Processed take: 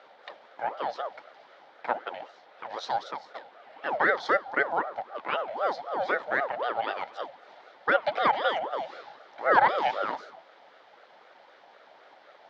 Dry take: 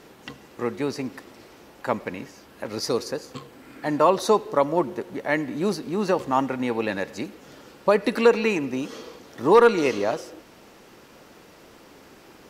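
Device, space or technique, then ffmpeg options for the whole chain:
voice changer toy: -af "aeval=exprs='val(0)*sin(2*PI*660*n/s+660*0.5/3.9*sin(2*PI*3.9*n/s))':c=same,highpass=550,equalizer=f=550:t=q:w=4:g=5,equalizer=f=790:t=q:w=4:g=4,equalizer=f=1100:t=q:w=4:g=-6,equalizer=f=2600:t=q:w=4:g=-7,lowpass=f=3900:w=0.5412,lowpass=f=3900:w=1.3066"

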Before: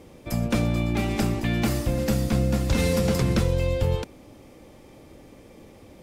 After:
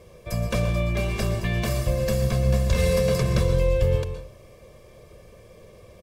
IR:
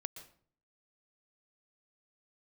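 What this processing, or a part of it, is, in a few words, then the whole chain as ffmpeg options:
microphone above a desk: -filter_complex "[0:a]aecho=1:1:1.8:0.89[s0];[1:a]atrim=start_sample=2205[s1];[s0][s1]afir=irnorm=-1:irlink=0"

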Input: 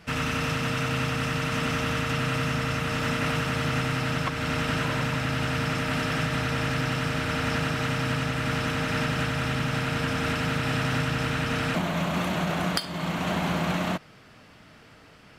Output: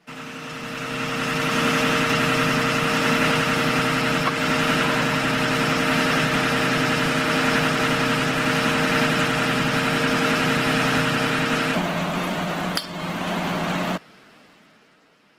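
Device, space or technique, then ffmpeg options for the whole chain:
video call: -af "highpass=f=170:w=0.5412,highpass=f=170:w=1.3066,dynaudnorm=f=110:g=21:m=6.31,volume=0.531" -ar 48000 -c:a libopus -b:a 16k

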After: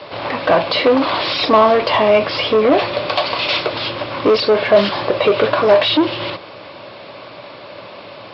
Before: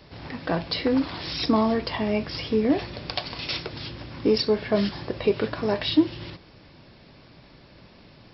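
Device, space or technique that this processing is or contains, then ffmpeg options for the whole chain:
overdrive pedal into a guitar cabinet: -filter_complex "[0:a]asplit=2[s0][s1];[s1]highpass=f=720:p=1,volume=14.1,asoftclip=type=tanh:threshold=0.398[s2];[s0][s2]amix=inputs=2:normalize=0,lowpass=f=4900:p=1,volume=0.501,highpass=90,equalizer=f=110:t=q:w=4:g=5,equalizer=f=150:t=q:w=4:g=-5,equalizer=f=230:t=q:w=4:g=-4,equalizer=f=580:t=q:w=4:g=9,equalizer=f=1100:t=q:w=4:g=5,equalizer=f=1800:t=q:w=4:g=-5,lowpass=f=4200:w=0.5412,lowpass=f=4200:w=1.3066,volume=1.33"

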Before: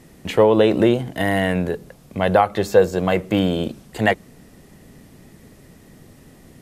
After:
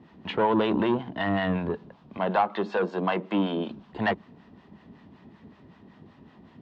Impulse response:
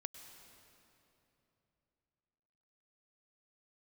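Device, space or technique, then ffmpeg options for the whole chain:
guitar amplifier with harmonic tremolo: -filter_complex "[0:a]asettb=1/sr,asplit=3[s0][s1][s2];[s0]atrim=end=2.174[s3];[s1]atrim=start=2.17:end=3.68,asetpts=PTS-STARTPTS,afade=t=in:d=0.004:c=qsin,afade=t=out:st=1.506:d=0.004:c=qsin,highpass=f=200:w=0.5412,highpass=f=200:w=1.3066[s4];[s2]atrim=start=3.676[s5];[s3][s4]acrossfade=d=0.004:c1=hsin:c2=qsin[s6];[s6][s5]acrossfade=d=0.004:c1=qsin:c2=hsin,acrossover=split=680[s7][s8];[s7]aeval=exprs='val(0)*(1-0.7/2+0.7/2*cos(2*PI*5.3*n/s))':c=same[s9];[s8]aeval=exprs='val(0)*(1-0.7/2-0.7/2*cos(2*PI*5.3*n/s))':c=same[s10];[s9][s10]amix=inputs=2:normalize=0,asoftclip=type=tanh:threshold=0.158,highpass=87,equalizer=f=130:t=q:w=4:g=-5,equalizer=f=210:t=q:w=4:g=4,equalizer=f=510:t=q:w=4:g=-6,equalizer=f=970:t=q:w=4:g=9,equalizer=f=2200:t=q:w=4:g=-5,lowpass=f=3600:w=0.5412,lowpass=f=3600:w=1.3066,volume=0.891"

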